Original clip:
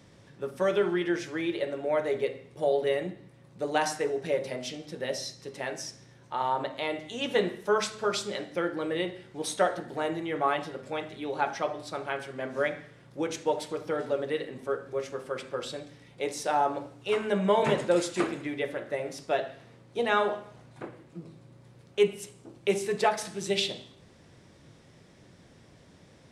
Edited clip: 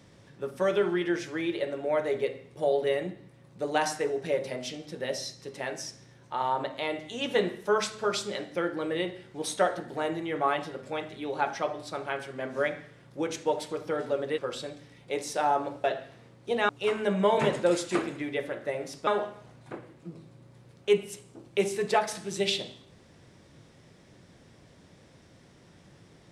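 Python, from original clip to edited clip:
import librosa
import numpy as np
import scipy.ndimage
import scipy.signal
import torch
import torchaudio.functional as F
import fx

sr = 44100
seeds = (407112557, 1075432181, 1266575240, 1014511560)

y = fx.edit(x, sr, fx.cut(start_s=14.38, length_s=1.1),
    fx.move(start_s=19.32, length_s=0.85, to_s=16.94), tone=tone)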